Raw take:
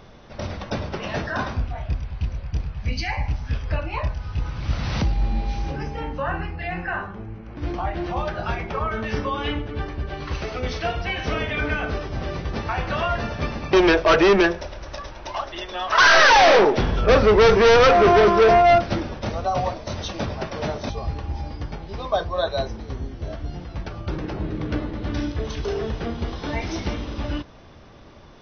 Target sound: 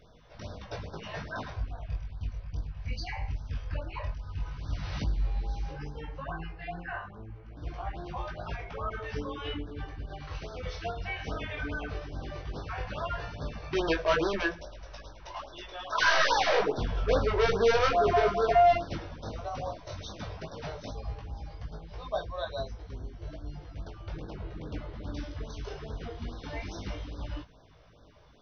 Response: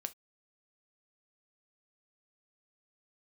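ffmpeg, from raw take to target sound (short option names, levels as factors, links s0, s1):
-filter_complex "[0:a]flanger=delay=18.5:depth=3.3:speed=0.14[s0];[1:a]atrim=start_sample=2205,asetrate=83790,aresample=44100[s1];[s0][s1]afir=irnorm=-1:irlink=0,afftfilt=real='re*(1-between(b*sr/1024,200*pow(2500/200,0.5+0.5*sin(2*PI*2.4*pts/sr))/1.41,200*pow(2500/200,0.5+0.5*sin(2*PI*2.4*pts/sr))*1.41))':imag='im*(1-between(b*sr/1024,200*pow(2500/200,0.5+0.5*sin(2*PI*2.4*pts/sr))/1.41,200*pow(2500/200,0.5+0.5*sin(2*PI*2.4*pts/sr))*1.41))':win_size=1024:overlap=0.75"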